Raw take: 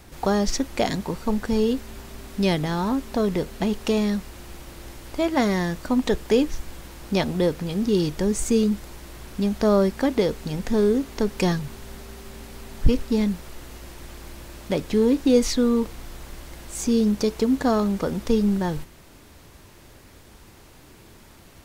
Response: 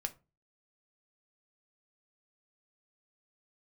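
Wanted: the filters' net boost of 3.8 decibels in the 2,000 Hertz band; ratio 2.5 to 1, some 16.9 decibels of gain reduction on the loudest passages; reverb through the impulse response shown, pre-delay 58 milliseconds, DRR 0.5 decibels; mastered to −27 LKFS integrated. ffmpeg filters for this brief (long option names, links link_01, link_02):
-filter_complex "[0:a]equalizer=frequency=2000:width_type=o:gain=4.5,acompressor=threshold=-36dB:ratio=2.5,asplit=2[link_01][link_02];[1:a]atrim=start_sample=2205,adelay=58[link_03];[link_02][link_03]afir=irnorm=-1:irlink=0,volume=-0.5dB[link_04];[link_01][link_04]amix=inputs=2:normalize=0,volume=6.5dB"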